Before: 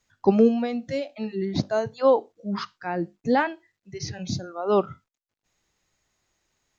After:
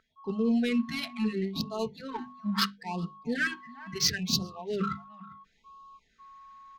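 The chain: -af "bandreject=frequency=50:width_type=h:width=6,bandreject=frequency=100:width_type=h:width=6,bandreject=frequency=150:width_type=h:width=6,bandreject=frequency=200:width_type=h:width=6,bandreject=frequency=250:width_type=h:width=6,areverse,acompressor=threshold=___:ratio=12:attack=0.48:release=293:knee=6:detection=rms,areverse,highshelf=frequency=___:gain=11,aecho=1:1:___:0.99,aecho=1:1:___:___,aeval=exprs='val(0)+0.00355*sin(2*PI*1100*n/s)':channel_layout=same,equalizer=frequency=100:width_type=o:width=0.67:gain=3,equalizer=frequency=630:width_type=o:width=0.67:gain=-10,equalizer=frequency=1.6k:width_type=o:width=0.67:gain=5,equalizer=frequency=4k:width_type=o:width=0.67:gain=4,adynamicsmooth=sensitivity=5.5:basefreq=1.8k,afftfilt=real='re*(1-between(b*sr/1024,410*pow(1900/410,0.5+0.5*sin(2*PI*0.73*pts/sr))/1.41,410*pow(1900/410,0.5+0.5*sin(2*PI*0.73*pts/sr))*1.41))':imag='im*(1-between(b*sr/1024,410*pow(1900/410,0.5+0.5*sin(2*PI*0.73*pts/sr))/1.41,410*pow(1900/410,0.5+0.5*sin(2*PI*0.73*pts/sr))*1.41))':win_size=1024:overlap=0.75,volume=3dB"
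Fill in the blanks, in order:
-29dB, 2.6k, 4.5, 400, 0.126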